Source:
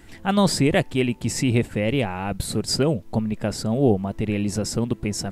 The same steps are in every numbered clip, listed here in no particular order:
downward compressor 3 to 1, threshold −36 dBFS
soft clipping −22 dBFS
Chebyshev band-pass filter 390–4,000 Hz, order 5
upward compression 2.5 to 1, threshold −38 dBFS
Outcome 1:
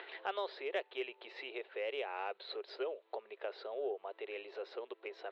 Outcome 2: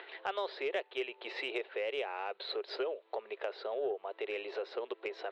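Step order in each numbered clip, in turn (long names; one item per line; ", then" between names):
upward compression, then downward compressor, then Chebyshev band-pass filter, then soft clipping
upward compression, then Chebyshev band-pass filter, then downward compressor, then soft clipping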